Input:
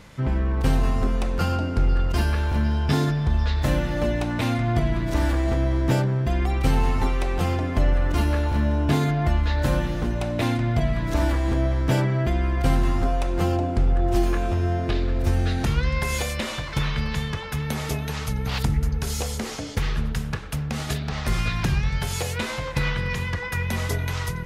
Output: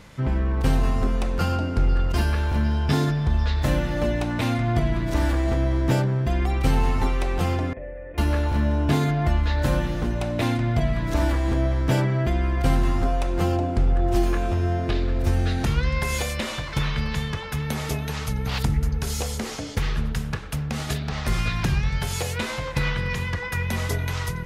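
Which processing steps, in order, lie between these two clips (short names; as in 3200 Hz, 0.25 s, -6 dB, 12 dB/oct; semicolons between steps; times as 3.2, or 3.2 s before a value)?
7.73–8.18 vocal tract filter e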